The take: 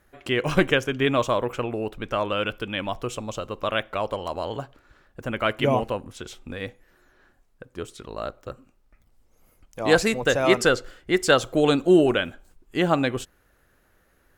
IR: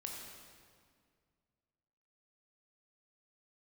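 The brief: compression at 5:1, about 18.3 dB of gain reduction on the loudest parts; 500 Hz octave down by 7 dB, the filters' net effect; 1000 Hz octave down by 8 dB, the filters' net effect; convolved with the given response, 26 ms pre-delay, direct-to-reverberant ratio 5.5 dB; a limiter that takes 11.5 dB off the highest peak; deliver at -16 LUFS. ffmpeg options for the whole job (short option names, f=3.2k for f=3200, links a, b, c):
-filter_complex "[0:a]equalizer=f=500:t=o:g=-7,equalizer=f=1k:t=o:g=-9,acompressor=threshold=-38dB:ratio=5,alimiter=level_in=9.5dB:limit=-24dB:level=0:latency=1,volume=-9.5dB,asplit=2[a][b];[1:a]atrim=start_sample=2205,adelay=26[c];[b][c]afir=irnorm=-1:irlink=0,volume=-4dB[d];[a][d]amix=inputs=2:normalize=0,volume=29dB"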